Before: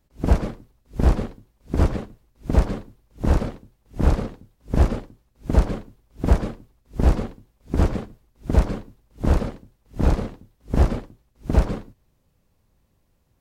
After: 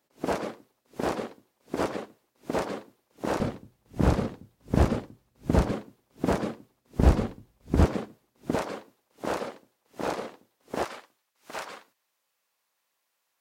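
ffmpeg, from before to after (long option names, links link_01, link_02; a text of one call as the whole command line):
ffmpeg -i in.wav -af "asetnsamples=nb_out_samples=441:pad=0,asendcmd='3.4 highpass f 92;5.71 highpass f 200;6.99 highpass f 58;7.85 highpass f 220;8.55 highpass f 470;10.84 highpass f 1100',highpass=360" out.wav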